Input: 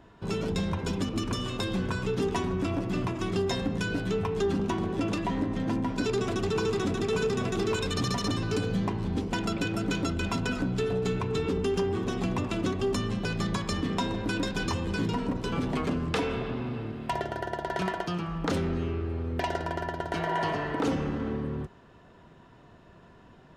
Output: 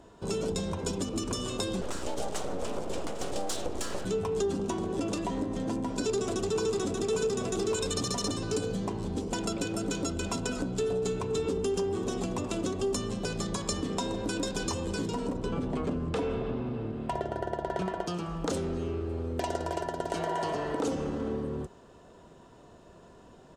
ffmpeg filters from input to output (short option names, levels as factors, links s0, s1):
-filter_complex "[0:a]asettb=1/sr,asplit=3[s0][s1][s2];[s0]atrim=end=1.814[s3];[s1]atrim=start=1.81:end=4.05,asetpts=PTS-STARTPTS,afade=t=in:d=0.004:c=qsin,afade=t=out:st=2.236:d=0.004:c=qsin,aeval=exprs='abs(val(0))':c=same[s4];[s2]atrim=start=4.046[s5];[s3][s4]acrossfade=d=0.004:c1=hsin:c2=qsin[s6];[s6][s5]acrossfade=d=0.004:c1=qsin:c2=hsin,asplit=3[s7][s8][s9];[s7]afade=t=out:st=15.36:d=0.02[s10];[s8]bass=f=250:g=5,treble=f=4000:g=-12,afade=t=in:st=15.36:d=0.02,afade=t=out:st=18.06:d=0.02[s11];[s9]afade=t=in:st=18.06:d=0.02[s12];[s10][s11][s12]amix=inputs=3:normalize=0,asplit=2[s13][s14];[s14]afade=t=in:st=19.07:d=0.01,afade=t=out:st=19.49:d=0.01,aecho=0:1:330|660|990|1320|1650|1980:0.375837|0.187919|0.0939594|0.0469797|0.0234898|0.0117449[s15];[s13][s15]amix=inputs=2:normalize=0,acompressor=threshold=0.0316:ratio=2.5,equalizer=f=125:t=o:w=1:g=-4,equalizer=f=500:t=o:w=1:g=5,equalizer=f=2000:t=o:w=1:g=-6,equalizer=f=8000:t=o:w=1:g=12"